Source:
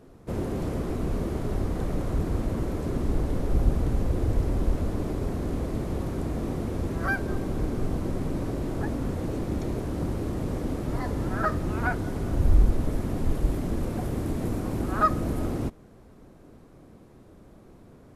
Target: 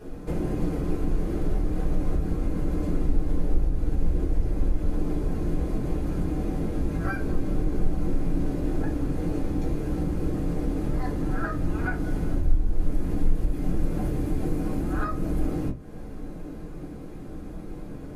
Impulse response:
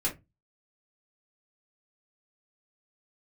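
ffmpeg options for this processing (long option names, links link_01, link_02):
-filter_complex "[0:a]acompressor=threshold=-39dB:ratio=4[link_01];[1:a]atrim=start_sample=2205[link_02];[link_01][link_02]afir=irnorm=-1:irlink=0,volume=3.5dB"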